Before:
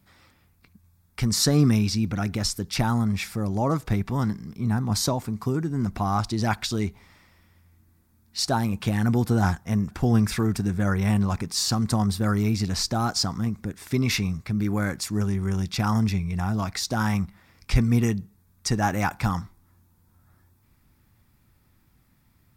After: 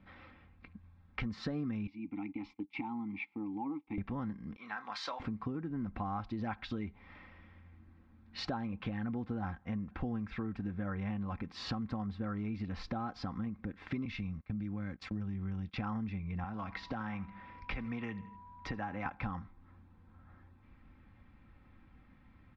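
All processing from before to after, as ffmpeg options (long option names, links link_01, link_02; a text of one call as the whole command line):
ffmpeg -i in.wav -filter_complex "[0:a]asettb=1/sr,asplit=3[link_01][link_02][link_03];[link_01]atrim=end=1.874[link_04];[link_02]atrim=start=1.87:end=3.98,asetpts=PTS-STARTPTS,afade=type=in:duration=0.004:curve=qsin,afade=type=out:start_time=2.106:duration=0.004:curve=qsin,agate=range=-16dB:threshold=-32dB:ratio=16:release=100:detection=peak,asplit=3[link_05][link_06][link_07];[link_05]bandpass=frequency=300:width_type=q:width=8,volume=0dB[link_08];[link_06]bandpass=frequency=870:width_type=q:width=8,volume=-6dB[link_09];[link_07]bandpass=frequency=2240:width_type=q:width=8,volume=-9dB[link_10];[link_08][link_09][link_10]amix=inputs=3:normalize=0,highshelf=frequency=2000:gain=9[link_11];[link_03]atrim=start=3.976[link_12];[link_04][link_11]acrossfade=duration=0.004:curve1=hsin:curve2=qsin[link_13];[link_13][link_12]acrossfade=duration=0.004:curve1=qsin:curve2=hsin,asettb=1/sr,asplit=3[link_14][link_15][link_16];[link_14]atrim=end=4.564[link_17];[link_15]atrim=start=4.56:end=5.2,asetpts=PTS-STARTPTS,afade=type=in:duration=0.004:curve=qsin,afade=type=out:start_time=0.636:duration=0.004:curve=qsin,highpass=1300,asplit=2[link_18][link_19];[link_19]adelay=29,volume=-11.5dB[link_20];[link_18][link_20]amix=inputs=2:normalize=0,atrim=end_sample=28224[link_21];[link_16]atrim=start=5.196[link_22];[link_17][link_21]acrossfade=duration=0.004:curve1=hsin:curve2=qsin[link_23];[link_23][link_22]acrossfade=duration=0.004:curve1=qsin:curve2=hsin,asettb=1/sr,asplit=3[link_24][link_25][link_26];[link_24]atrim=end=14.054[link_27];[link_25]atrim=start=14.05:end=15.74,asetpts=PTS-STARTPTS,afade=type=in:duration=0.004:curve=qsin,afade=type=out:start_time=1.686:duration=0.004:curve=qsin,acrossover=split=230|3000[link_28][link_29][link_30];[link_29]acompressor=threshold=-40dB:ratio=3:attack=3.2:release=140:knee=2.83:detection=peak[link_31];[link_28][link_31][link_30]amix=inputs=3:normalize=0,agate=range=-20dB:threshold=-36dB:ratio=16:release=100:detection=peak[link_32];[link_26]atrim=start=15.736[link_33];[link_27][link_32]acrossfade=duration=0.004:curve1=hsin:curve2=qsin[link_34];[link_34][link_33]acrossfade=duration=0.004:curve1=qsin:curve2=hsin,asettb=1/sr,asplit=3[link_35][link_36][link_37];[link_35]atrim=end=16.444[link_38];[link_36]atrim=start=16.44:end=19.06,asetpts=PTS-STARTPTS,afade=type=in:duration=0.004:curve=qsin,afade=type=out:start_time=2.616:duration=0.004:curve=qsin,acrossover=split=240|620|6500[link_39][link_40][link_41][link_42];[link_39]acompressor=threshold=-37dB:ratio=3[link_43];[link_40]acompressor=threshold=-44dB:ratio=3[link_44];[link_41]acompressor=threshold=-35dB:ratio=3[link_45];[link_42]acompressor=threshold=-54dB:ratio=3[link_46];[link_43][link_44][link_45][link_46]amix=inputs=4:normalize=0,aeval=exprs='val(0)+0.00224*sin(2*PI*980*n/s)':channel_layout=same,aecho=1:1:80|160|240:0.112|0.0449|0.018,atrim=end_sample=115542[link_47];[link_37]atrim=start=19.056[link_48];[link_38][link_47]acrossfade=duration=0.004:curve1=hsin:curve2=qsin[link_49];[link_49][link_48]acrossfade=duration=0.004:curve1=qsin:curve2=hsin,lowpass=frequency=2900:width=0.5412,lowpass=frequency=2900:width=1.3066,aecho=1:1:3.8:0.43,acompressor=threshold=-39dB:ratio=5,volume=2dB" out.wav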